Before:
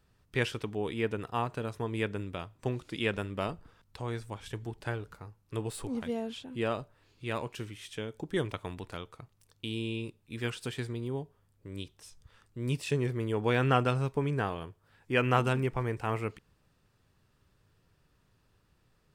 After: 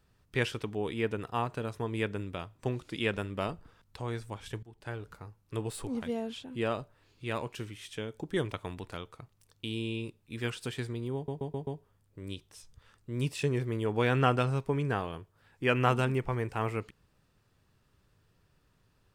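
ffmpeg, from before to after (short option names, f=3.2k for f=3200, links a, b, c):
-filter_complex "[0:a]asplit=6[a][b][c][d][e][f];[a]atrim=end=4.63,asetpts=PTS-STARTPTS,afade=t=out:st=4.626:d=0.004:c=hsin:silence=0.0944061[g];[b]atrim=start=4.63:end=11.282,asetpts=PTS-STARTPTS,afade=t=in:d=0.5:silence=0.0944061[h];[c]atrim=start=11.148:end=11.282[i];[d]atrim=start=11.148:end=11.282[j];[e]atrim=start=11.148:end=11.282[k];[f]atrim=start=11.148[l];[g][h]concat=n=2:v=0:a=1[m];[m][i]acrossfade=d=0.004:c1=hsin:c2=hsin[n];[n][j]acrossfade=d=0.004:c1=hsin:c2=hsin[o];[o][k]acrossfade=d=0.004:c1=hsin:c2=hsin[p];[p][l]acrossfade=d=0.004:c1=hsin:c2=hsin"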